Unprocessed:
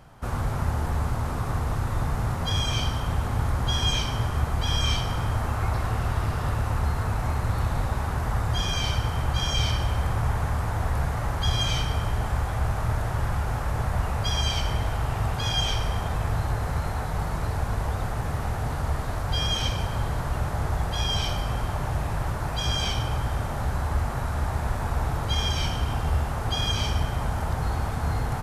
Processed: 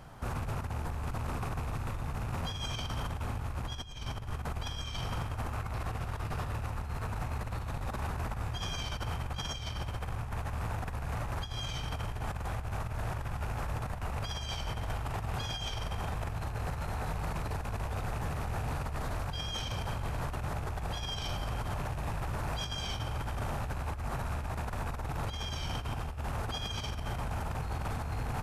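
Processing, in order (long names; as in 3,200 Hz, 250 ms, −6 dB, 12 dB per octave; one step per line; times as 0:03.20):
loose part that buzzes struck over −28 dBFS, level −32 dBFS
0:03.75–0:04.33: low-shelf EQ 72 Hz +8.5 dB
compressor whose output falls as the input rises −28 dBFS, ratio −0.5
brickwall limiter −23.5 dBFS, peak gain reduction 9 dB
level −3 dB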